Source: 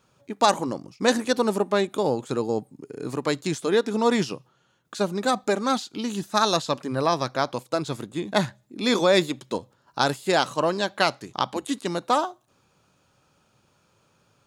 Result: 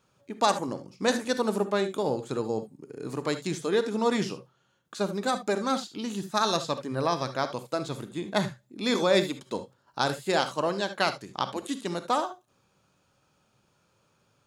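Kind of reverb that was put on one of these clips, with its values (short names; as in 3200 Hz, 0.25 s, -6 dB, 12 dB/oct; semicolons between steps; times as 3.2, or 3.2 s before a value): non-linear reverb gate 90 ms rising, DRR 10 dB; gain -4.5 dB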